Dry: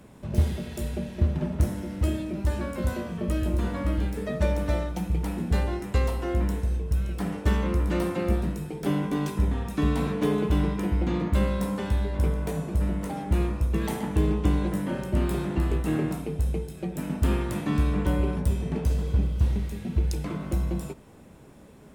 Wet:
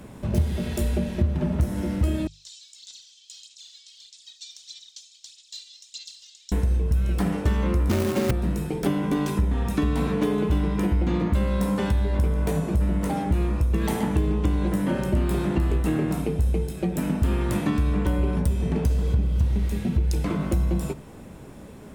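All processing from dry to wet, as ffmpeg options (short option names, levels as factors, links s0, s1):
-filter_complex "[0:a]asettb=1/sr,asplit=3[s0][s1][s2];[s0]atrim=end=2.274[s3];[s1]atrim=start=2.27:end=6.52,asetpts=PTS-STARTPTS,afade=t=in:d=0.004:c=qsin,afade=t=out:st=4.246:d=0.004:c=qsin,asuperpass=centerf=5200:order=8:qfactor=1.3,aphaser=in_gain=1:out_gain=1:delay=2.6:decay=0.56:speed=1.6:type=sinusoidal[s4];[s2]atrim=start=6.516[s5];[s3][s4]acrossfade=d=0.004:c1=hsin:c2=qsin[s6];[s6][s5]acrossfade=d=0.004:c1=qsin:c2=hsin,asettb=1/sr,asplit=3[s7][s8][s9];[s7]atrim=end=7.894[s10];[s8]atrim=start=7.89:end=8.31,asetpts=PTS-STARTPTS,afade=t=in:d=0.004:c=qsin,afade=t=out:st=0.416:d=0.004:c=qsin,lowshelf=f=400:g=6,afreqshift=32,acrusher=bits=2:mode=log:mix=0:aa=0.000001[s11];[s9]atrim=start=8.306[s12];[s10][s11]acrossfade=d=0.004:c1=hsin:c2=qsin[s13];[s13][s12]acrossfade=d=0.004:c1=qsin:c2=hsin,acompressor=threshold=0.0447:ratio=6,lowshelf=f=160:g=3.5,bandreject=f=50:t=h:w=6,bandreject=f=100:t=h:w=6,bandreject=f=150:t=h:w=6,volume=2.11"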